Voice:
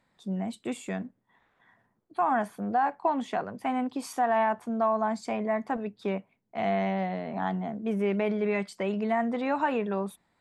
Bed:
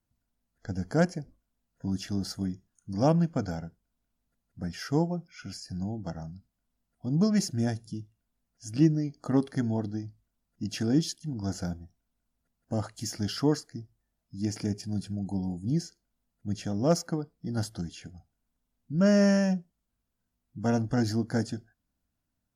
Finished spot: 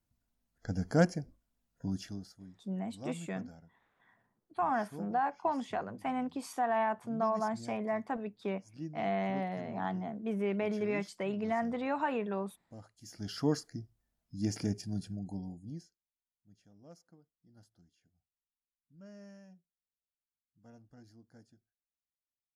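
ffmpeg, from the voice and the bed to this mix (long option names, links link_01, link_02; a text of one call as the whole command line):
ffmpeg -i stem1.wav -i stem2.wav -filter_complex "[0:a]adelay=2400,volume=-5.5dB[link_01];[1:a]volume=16dB,afade=type=out:start_time=1.71:duration=0.58:silence=0.11885,afade=type=in:start_time=13.02:duration=0.64:silence=0.133352,afade=type=out:start_time=14.62:duration=1.36:silence=0.0398107[link_02];[link_01][link_02]amix=inputs=2:normalize=0" out.wav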